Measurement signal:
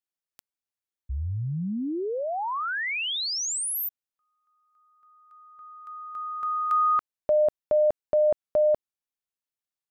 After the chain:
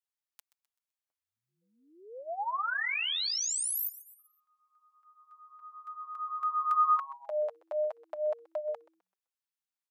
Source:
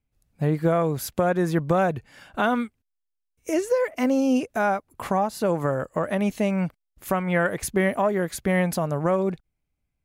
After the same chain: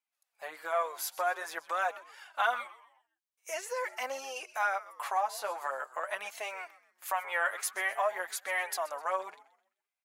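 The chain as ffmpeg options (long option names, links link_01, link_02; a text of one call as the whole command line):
ffmpeg -i in.wav -filter_complex "[0:a]asplit=2[link_01][link_02];[link_02]asplit=4[link_03][link_04][link_05][link_06];[link_03]adelay=128,afreqshift=-140,volume=-16.5dB[link_07];[link_04]adelay=256,afreqshift=-280,volume=-24.2dB[link_08];[link_05]adelay=384,afreqshift=-420,volume=-32dB[link_09];[link_06]adelay=512,afreqshift=-560,volume=-39.7dB[link_10];[link_07][link_08][link_09][link_10]amix=inputs=4:normalize=0[link_11];[link_01][link_11]amix=inputs=2:normalize=0,flanger=delay=2:depth=7.7:regen=3:speed=0.46:shape=triangular,highpass=frequency=750:width=0.5412,highpass=frequency=750:width=1.3066" out.wav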